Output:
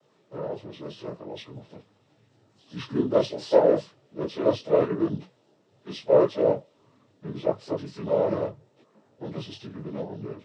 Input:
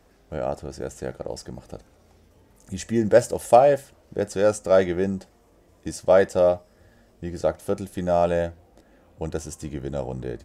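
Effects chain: frequency axis rescaled in octaves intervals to 79%; noise-vocoded speech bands 12; detune thickener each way 27 cents; trim +1.5 dB

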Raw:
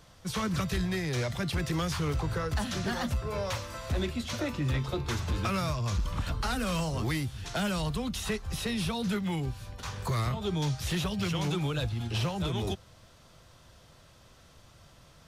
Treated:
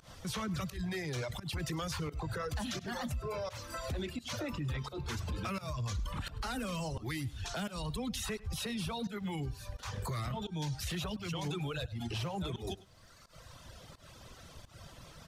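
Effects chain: reverb removal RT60 1.4 s; in parallel at +2 dB: compression, threshold -45 dBFS, peak gain reduction 17.5 dB; on the sum: peak limiter -30.5 dBFS, peak gain reduction 9.5 dB; volume shaper 86 bpm, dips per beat 1, -24 dB, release 146 ms; delay 102 ms -19.5 dB

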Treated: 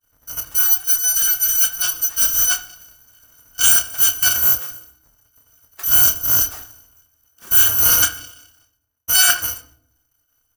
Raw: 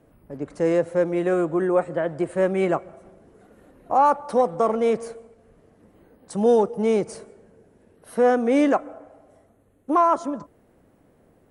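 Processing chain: bit-reversed sample order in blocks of 256 samples; expander -48 dBFS; tilt shelf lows -6 dB, about 660 Hz; speed mistake 44.1 kHz file played as 48 kHz; resonant high shelf 2 kHz -8.5 dB, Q 1.5; doubling 28 ms -9 dB; on a send: reverberation RT60 0.65 s, pre-delay 8 ms, DRR 7 dB; on the sum: trim +7 dB

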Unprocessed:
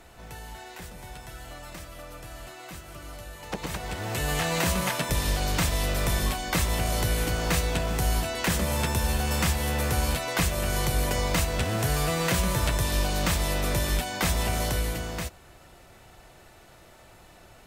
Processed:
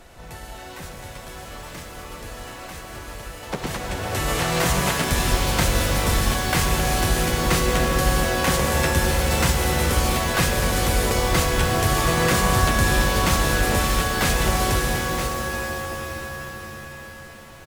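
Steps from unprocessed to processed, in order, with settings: harmony voices -5 st -3 dB; pitch-shifted reverb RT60 4 s, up +7 st, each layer -2 dB, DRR 5 dB; trim +2 dB

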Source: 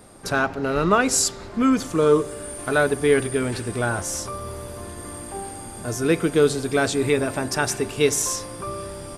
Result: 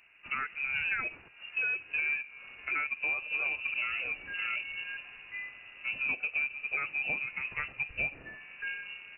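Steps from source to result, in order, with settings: 2.85–4.97 s: chunks repeated in reverse 446 ms, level -2.5 dB; spectral noise reduction 11 dB; dynamic bell 1.8 kHz, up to -5 dB, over -48 dBFS, Q 6.4; compression 5:1, threshold -29 dBFS, peak gain reduction 15 dB; careless resampling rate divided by 3×, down none, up hold; short-mantissa float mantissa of 2-bit; frequency inversion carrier 2.8 kHz; trim -2 dB

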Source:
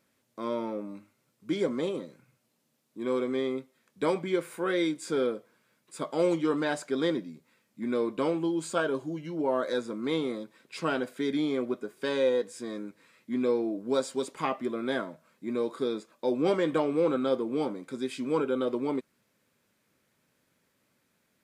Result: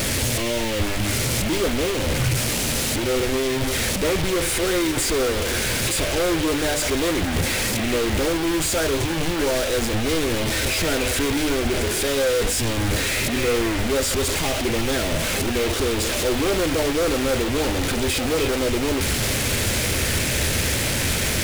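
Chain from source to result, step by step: one-bit delta coder 64 kbps, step -26.5 dBFS; peaking EQ 1.1 kHz -14.5 dB 0.62 oct; hum notches 50/100/150/200/250/300 Hz; waveshaping leveller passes 3; bit crusher 5-bit; resonant low shelf 120 Hz +12 dB, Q 1.5; on a send: repeats whose band climbs or falls 298 ms, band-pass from 2.5 kHz, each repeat -0.7 oct, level -4 dB

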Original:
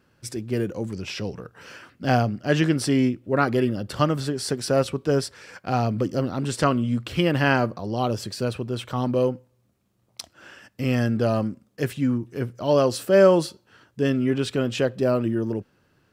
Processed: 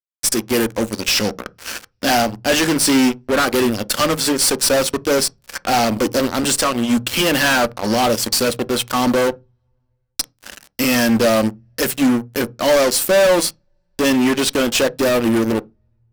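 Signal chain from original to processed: transient shaper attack +1 dB, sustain -8 dB; RIAA curve recording; 6.34–6.93 s: compression 2.5:1, threshold -27 dBFS, peak gain reduction 8 dB; fuzz box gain 32 dB, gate -39 dBFS; on a send: reverberation RT60 0.20 s, pre-delay 3 ms, DRR 15 dB

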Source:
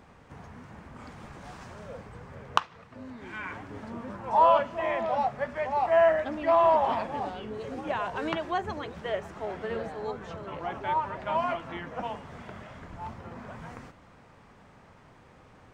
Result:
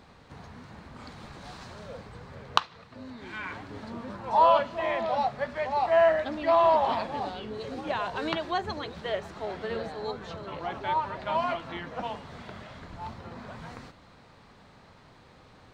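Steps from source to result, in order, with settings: peaking EQ 4.1 kHz +11.5 dB 0.52 oct

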